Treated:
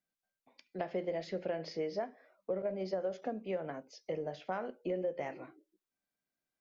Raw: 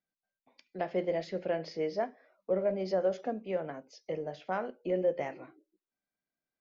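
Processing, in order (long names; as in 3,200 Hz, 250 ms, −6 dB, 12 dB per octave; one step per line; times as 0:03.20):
0:02.62–0:03.22: downward expander −32 dBFS
downward compressor, threshold −32 dBFS, peak gain reduction 8.5 dB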